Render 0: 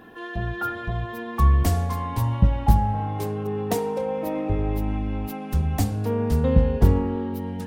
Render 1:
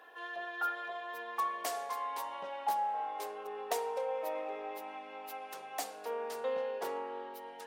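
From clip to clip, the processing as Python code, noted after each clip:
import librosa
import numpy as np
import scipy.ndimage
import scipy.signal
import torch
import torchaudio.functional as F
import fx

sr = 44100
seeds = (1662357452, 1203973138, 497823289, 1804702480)

y = scipy.signal.sosfilt(scipy.signal.butter(4, 520.0, 'highpass', fs=sr, output='sos'), x)
y = fx.high_shelf(y, sr, hz=11000.0, db=-4.5)
y = F.gain(torch.from_numpy(y), -5.5).numpy()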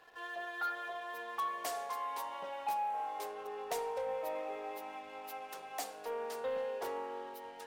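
y = fx.leveller(x, sr, passes=2)
y = F.gain(torch.from_numpy(y), -8.5).numpy()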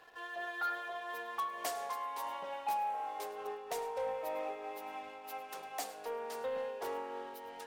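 y = x + 10.0 ** (-17.0 / 20.0) * np.pad(x, (int(104 * sr / 1000.0), 0))[:len(x)]
y = fx.am_noise(y, sr, seeds[0], hz=5.7, depth_pct=60)
y = F.gain(torch.from_numpy(y), 2.5).numpy()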